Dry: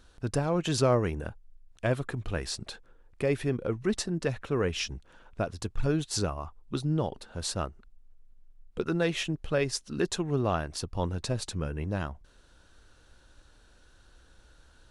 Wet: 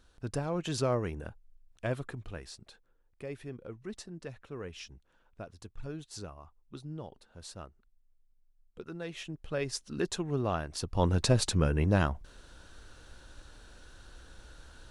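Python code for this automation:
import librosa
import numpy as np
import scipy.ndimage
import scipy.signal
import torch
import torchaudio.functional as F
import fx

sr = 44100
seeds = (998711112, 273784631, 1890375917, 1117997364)

y = fx.gain(x, sr, db=fx.line((2.04, -5.5), (2.57, -13.5), (8.98, -13.5), (9.8, -3.5), (10.7, -3.5), (11.15, 6.0)))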